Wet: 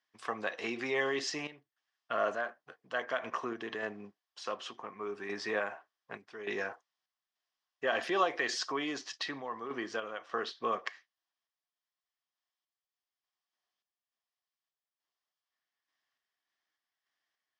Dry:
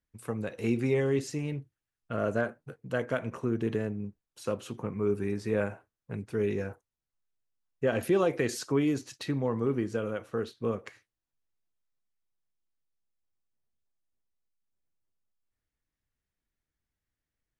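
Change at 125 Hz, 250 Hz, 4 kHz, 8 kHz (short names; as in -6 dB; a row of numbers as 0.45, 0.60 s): -22.5, -11.5, +6.0, -1.5 dB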